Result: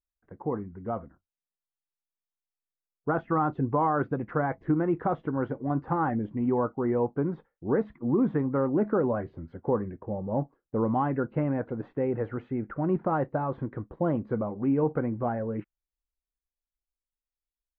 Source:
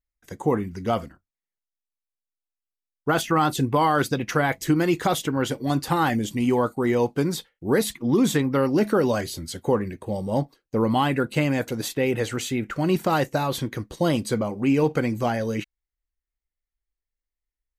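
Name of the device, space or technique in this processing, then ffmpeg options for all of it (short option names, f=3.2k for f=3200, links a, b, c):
action camera in a waterproof case: -af "lowpass=f=1.4k:w=0.5412,lowpass=f=1.4k:w=1.3066,dynaudnorm=f=210:g=17:m=4dB,volume=-8.5dB" -ar 32000 -c:a aac -b:a 64k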